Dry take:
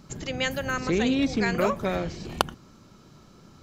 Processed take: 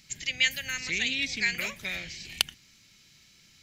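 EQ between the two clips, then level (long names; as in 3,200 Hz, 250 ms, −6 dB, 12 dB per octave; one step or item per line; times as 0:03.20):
guitar amp tone stack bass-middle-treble 5-5-5
high shelf with overshoot 1,600 Hz +8.5 dB, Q 3
+1.5 dB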